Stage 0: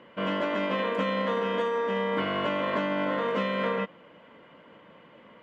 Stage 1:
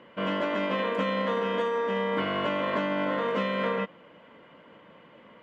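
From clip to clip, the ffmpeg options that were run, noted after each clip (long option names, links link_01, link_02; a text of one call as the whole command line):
ffmpeg -i in.wav -af anull out.wav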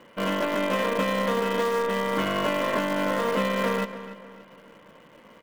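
ffmpeg -i in.wav -filter_complex "[0:a]asplit=2[link_01][link_02];[link_02]acrusher=bits=5:dc=4:mix=0:aa=0.000001,volume=-8.5dB[link_03];[link_01][link_03]amix=inputs=2:normalize=0,asplit=2[link_04][link_05];[link_05]adelay=291,lowpass=frequency=4000:poles=1,volume=-13dB,asplit=2[link_06][link_07];[link_07]adelay=291,lowpass=frequency=4000:poles=1,volume=0.39,asplit=2[link_08][link_09];[link_09]adelay=291,lowpass=frequency=4000:poles=1,volume=0.39,asplit=2[link_10][link_11];[link_11]adelay=291,lowpass=frequency=4000:poles=1,volume=0.39[link_12];[link_04][link_06][link_08][link_10][link_12]amix=inputs=5:normalize=0" out.wav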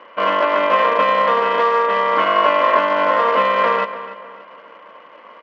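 ffmpeg -i in.wav -af "highpass=480,equalizer=frequency=640:width_type=q:width=4:gain=3,equalizer=frequency=1100:width_type=q:width=4:gain=8,equalizer=frequency=3700:width_type=q:width=4:gain=-6,lowpass=frequency=4000:width=0.5412,lowpass=frequency=4000:width=1.3066,volume=8.5dB" out.wav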